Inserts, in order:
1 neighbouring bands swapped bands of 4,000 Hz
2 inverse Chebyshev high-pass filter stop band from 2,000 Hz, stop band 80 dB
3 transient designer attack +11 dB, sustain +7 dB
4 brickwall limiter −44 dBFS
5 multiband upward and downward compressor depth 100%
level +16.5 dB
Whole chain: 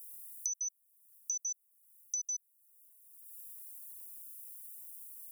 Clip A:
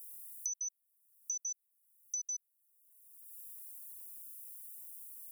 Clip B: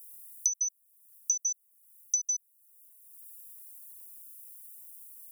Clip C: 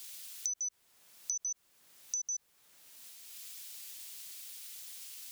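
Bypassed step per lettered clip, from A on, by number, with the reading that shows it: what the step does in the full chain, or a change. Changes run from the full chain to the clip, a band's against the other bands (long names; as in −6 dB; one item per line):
3, change in crest factor −3.0 dB
4, average gain reduction 3.0 dB
2, change in crest factor +2.0 dB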